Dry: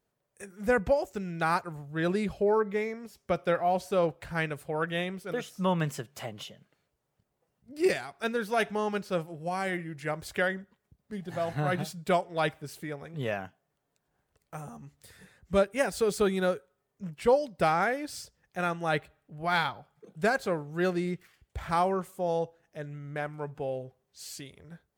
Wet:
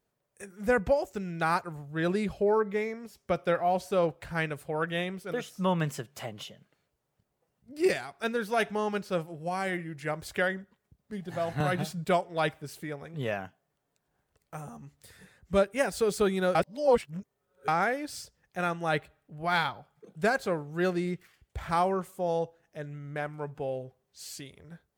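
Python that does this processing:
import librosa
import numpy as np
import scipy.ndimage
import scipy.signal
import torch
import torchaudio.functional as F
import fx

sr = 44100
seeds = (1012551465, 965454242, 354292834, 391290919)

y = fx.band_squash(x, sr, depth_pct=100, at=(11.6, 12.05))
y = fx.edit(y, sr, fx.reverse_span(start_s=16.55, length_s=1.13), tone=tone)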